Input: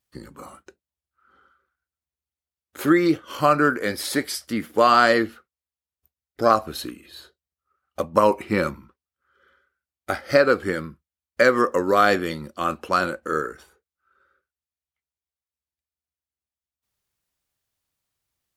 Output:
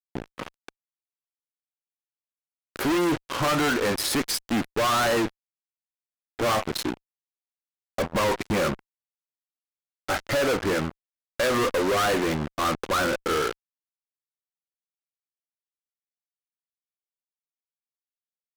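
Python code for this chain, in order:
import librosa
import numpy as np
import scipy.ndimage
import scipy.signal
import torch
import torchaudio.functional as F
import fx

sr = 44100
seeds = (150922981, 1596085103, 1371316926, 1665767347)

y = fx.wiener(x, sr, points=9)
y = fx.fuzz(y, sr, gain_db=39.0, gate_db=-36.0)
y = y * librosa.db_to_amplitude(-8.0)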